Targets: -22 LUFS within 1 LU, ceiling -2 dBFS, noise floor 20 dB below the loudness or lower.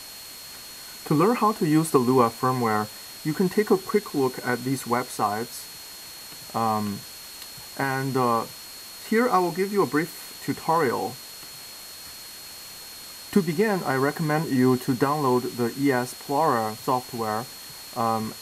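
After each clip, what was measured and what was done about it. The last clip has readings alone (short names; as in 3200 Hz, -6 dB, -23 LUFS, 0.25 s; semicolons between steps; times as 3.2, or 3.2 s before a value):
steady tone 4300 Hz; tone level -43 dBFS; noise floor -41 dBFS; noise floor target -45 dBFS; loudness -24.5 LUFS; peak -5.0 dBFS; loudness target -22.0 LUFS
-> notch 4300 Hz, Q 30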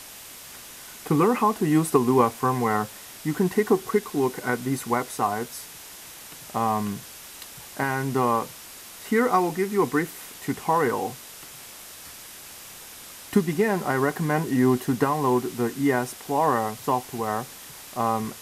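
steady tone none; noise floor -43 dBFS; noise floor target -45 dBFS
-> noise print and reduce 6 dB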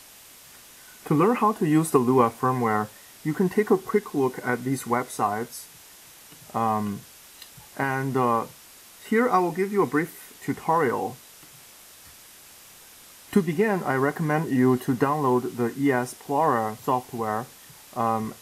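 noise floor -49 dBFS; loudness -24.5 LUFS; peak -5.0 dBFS; loudness target -22.0 LUFS
-> gain +2.5 dB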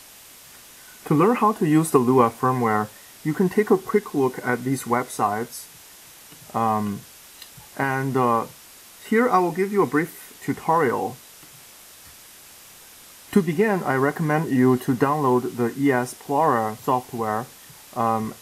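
loudness -22.0 LUFS; peak -2.5 dBFS; noise floor -47 dBFS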